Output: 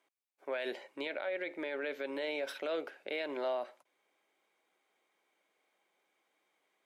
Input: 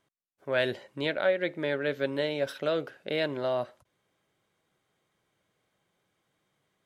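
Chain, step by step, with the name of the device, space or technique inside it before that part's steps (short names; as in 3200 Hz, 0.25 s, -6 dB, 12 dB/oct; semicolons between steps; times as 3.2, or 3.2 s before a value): laptop speaker (HPF 280 Hz 24 dB/oct; bell 830 Hz +5 dB 0.56 oct; bell 2300 Hz +8 dB 0.34 oct; limiter -24.5 dBFS, peak gain reduction 12 dB); gain -3.5 dB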